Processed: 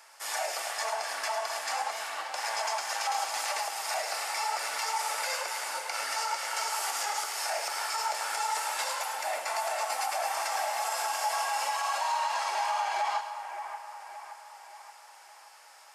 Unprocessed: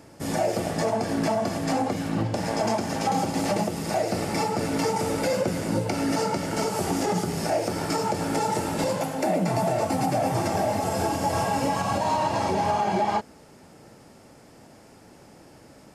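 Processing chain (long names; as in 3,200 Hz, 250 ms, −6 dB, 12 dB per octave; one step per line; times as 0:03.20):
high-pass filter 900 Hz 24 dB per octave
brickwall limiter −24 dBFS, peak gain reduction 6.5 dB
echo with a time of its own for lows and highs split 2,400 Hz, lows 574 ms, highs 106 ms, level −9.5 dB
level +2 dB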